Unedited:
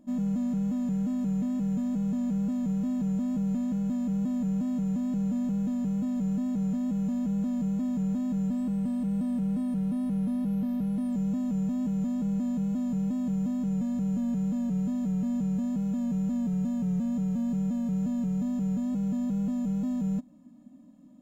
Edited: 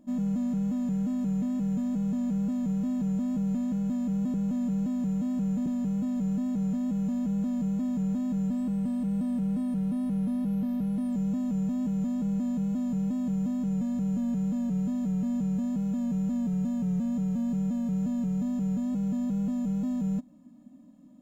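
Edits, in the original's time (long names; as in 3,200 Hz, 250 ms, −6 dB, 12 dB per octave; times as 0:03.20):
0:04.34–0:05.66: reverse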